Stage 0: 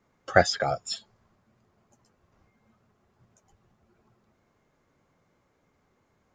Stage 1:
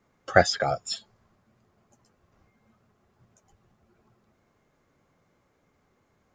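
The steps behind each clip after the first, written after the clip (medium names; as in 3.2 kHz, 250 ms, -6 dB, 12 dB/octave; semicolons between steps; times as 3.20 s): band-stop 930 Hz, Q 27; trim +1 dB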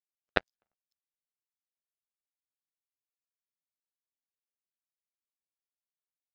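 transient shaper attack +11 dB, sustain +7 dB; ring modulator 61 Hz; power-law waveshaper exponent 3; trim -10.5 dB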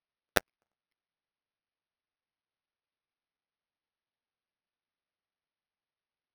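careless resampling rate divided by 6×, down none, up hold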